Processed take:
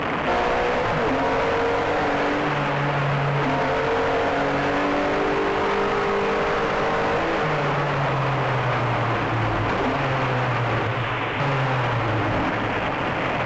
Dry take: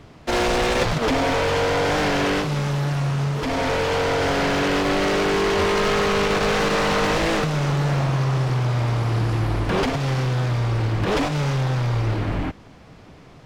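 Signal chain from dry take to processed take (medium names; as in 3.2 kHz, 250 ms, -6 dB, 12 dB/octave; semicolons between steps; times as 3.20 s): one-bit delta coder 16 kbps, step -27.5 dBFS; 10.87–11.40 s: differentiator; overdrive pedal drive 25 dB, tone 1.6 kHz, clips at -10.5 dBFS; echo whose repeats swap between lows and highs 502 ms, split 1.4 kHz, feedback 82%, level -11.5 dB; reverberation, pre-delay 3 ms, DRR 7 dB; peak limiter -15 dBFS, peak gain reduction 8 dB; band-stop 370 Hz, Q 12; µ-law 128 kbps 16 kHz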